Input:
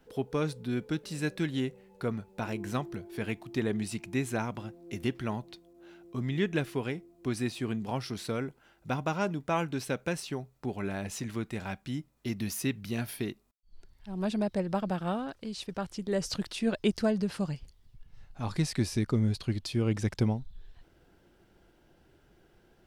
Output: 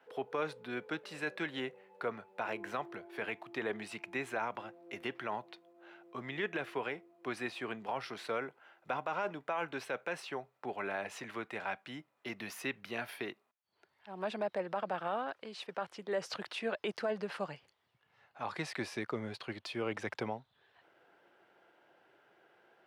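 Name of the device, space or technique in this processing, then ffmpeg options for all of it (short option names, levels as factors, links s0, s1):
DJ mixer with the lows and highs turned down: -filter_complex "[0:a]highpass=f=110:w=0.5412,highpass=f=110:w=1.3066,acrossover=split=470 3000:gain=0.0891 1 0.141[s0][s1][s2];[s0][s1][s2]amix=inputs=3:normalize=0,alimiter=level_in=1.88:limit=0.0631:level=0:latency=1:release=32,volume=0.531,volume=1.58"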